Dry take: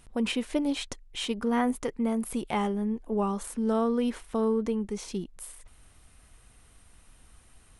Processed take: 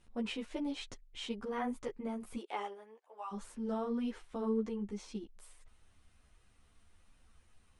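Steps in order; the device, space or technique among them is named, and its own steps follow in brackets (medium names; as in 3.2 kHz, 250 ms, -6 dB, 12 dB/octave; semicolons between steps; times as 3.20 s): 2.36–3.31 s: high-pass 310 Hz -> 840 Hz 24 dB/octave; string-machine ensemble chorus (three-phase chorus; low-pass 6.9 kHz 12 dB/octave); trim -6.5 dB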